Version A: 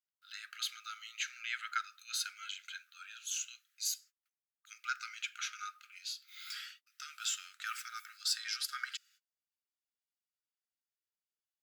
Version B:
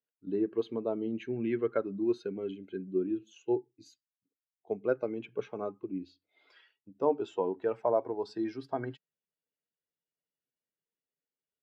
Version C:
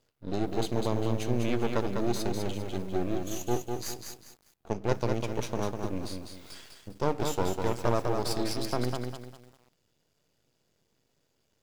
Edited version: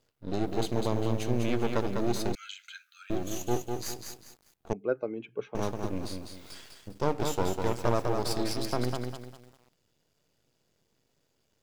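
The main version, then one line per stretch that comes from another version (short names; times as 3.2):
C
2.35–3.1 from A
4.73–5.55 from B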